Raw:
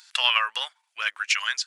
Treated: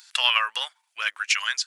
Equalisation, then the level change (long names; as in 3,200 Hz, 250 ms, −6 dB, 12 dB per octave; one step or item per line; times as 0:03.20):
high-shelf EQ 8,000 Hz +5.5 dB
0.0 dB